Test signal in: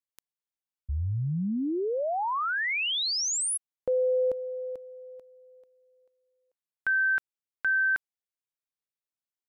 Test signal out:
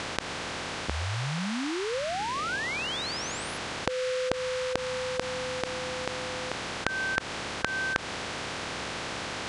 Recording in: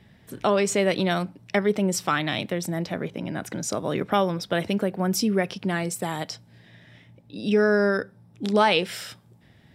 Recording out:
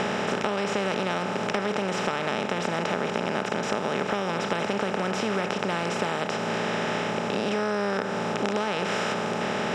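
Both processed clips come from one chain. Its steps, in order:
compressor on every frequency bin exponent 0.2
high-shelf EQ 12,000 Hz −7.5 dB
downward compressor, threshold −17 dBFS
high-frequency loss of the air 87 metres
level −5.5 dB

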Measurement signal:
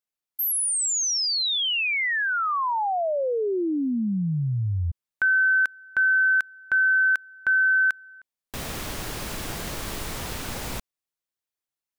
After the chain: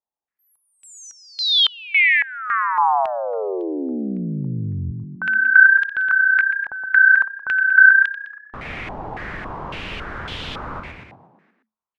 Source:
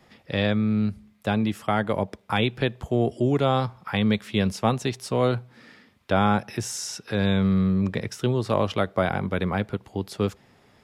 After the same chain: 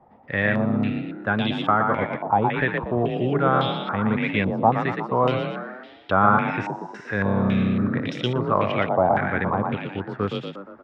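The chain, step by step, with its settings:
echo with shifted repeats 118 ms, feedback 55%, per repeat +31 Hz, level −4 dB
low-pass on a step sequencer 3.6 Hz 850–3,300 Hz
level −2 dB

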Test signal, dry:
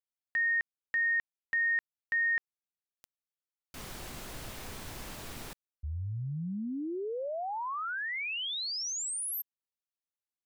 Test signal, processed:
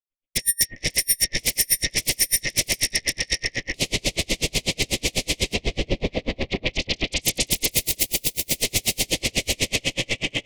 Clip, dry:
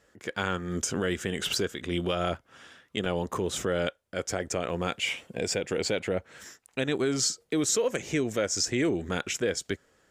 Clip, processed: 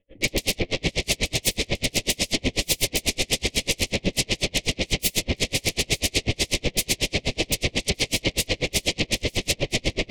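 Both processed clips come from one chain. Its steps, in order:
camcorder AGC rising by 60 dB per second, up to +26 dB
on a send: feedback delay with all-pass diffusion 558 ms, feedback 53%, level −7.5 dB
on the sum: soft clipping −17.5 dBFS
elliptic low-pass filter 3,200 Hz, stop band 40 dB
rectangular room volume 140 cubic metres, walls furnished, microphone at 2.4 metres
sine wavefolder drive 19 dB, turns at −14 dBFS
low-shelf EQ 110 Hz +9 dB
notch filter 880 Hz, Q 13
brickwall limiter −14 dBFS
downward expander −16 dBFS, range −33 dB
drawn EQ curve 560 Hz 0 dB, 1,500 Hz −30 dB, 2,100 Hz −1 dB
tremolo with a sine in dB 8.1 Hz, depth 38 dB
level +6.5 dB

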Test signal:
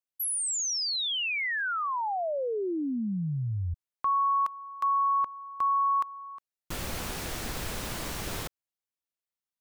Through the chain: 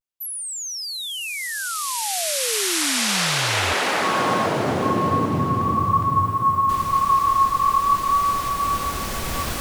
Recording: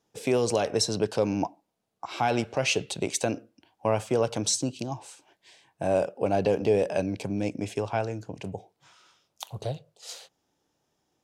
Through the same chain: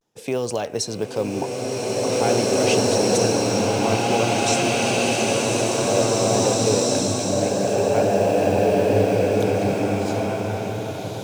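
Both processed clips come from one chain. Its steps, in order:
tape wow and flutter 0.33 Hz 45 cents
floating-point word with a short mantissa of 4 bits
slow-attack reverb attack 2,420 ms, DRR −8.5 dB

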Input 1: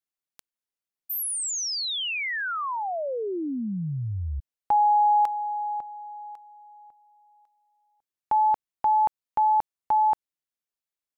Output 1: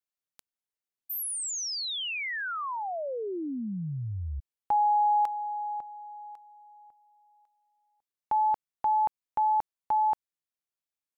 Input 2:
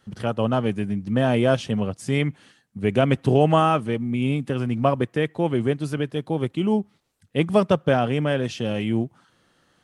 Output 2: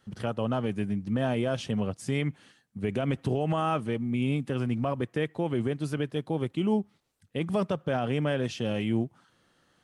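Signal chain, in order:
brickwall limiter −14 dBFS
level −4 dB

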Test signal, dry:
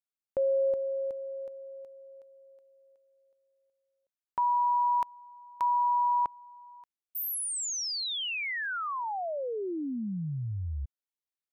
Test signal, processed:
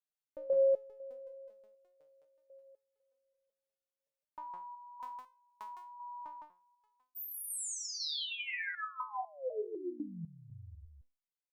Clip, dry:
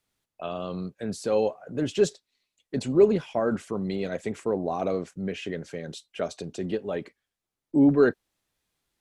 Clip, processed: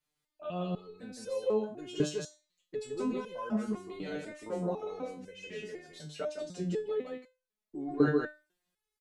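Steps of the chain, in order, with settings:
single-tap delay 160 ms −3 dB
step-sequenced resonator 4 Hz 150–510 Hz
level +5 dB

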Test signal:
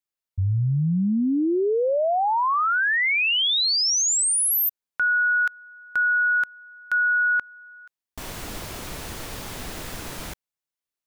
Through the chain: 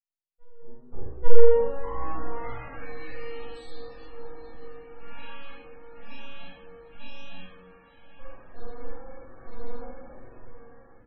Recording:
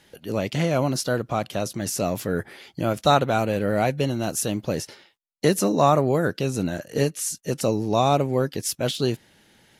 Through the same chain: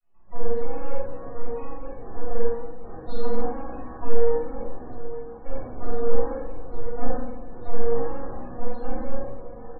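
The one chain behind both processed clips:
vocoder with an arpeggio as carrier major triad, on F#3, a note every 304 ms
dynamic equaliser 160 Hz, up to +4 dB, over −38 dBFS, Q 4.2
brickwall limiter −16.5 dBFS
resonances in every octave B, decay 0.41 s
feedback delay with all-pass diffusion 875 ms, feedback 71%, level −12.5 dB
full-wave rectification
double-tracking delay 45 ms −2.5 dB
rectangular room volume 680 cubic metres, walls mixed, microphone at 6.7 metres
spectral peaks only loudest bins 64
level +1 dB

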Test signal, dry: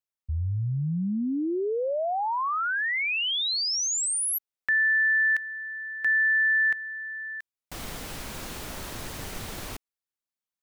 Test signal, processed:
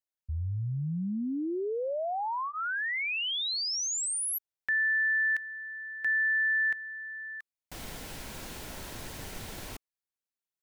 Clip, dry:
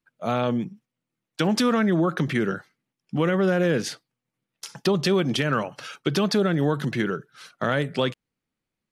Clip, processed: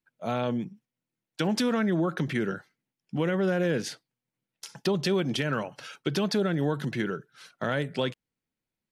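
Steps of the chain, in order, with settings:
notch filter 1,200 Hz, Q 9.7
level −4.5 dB

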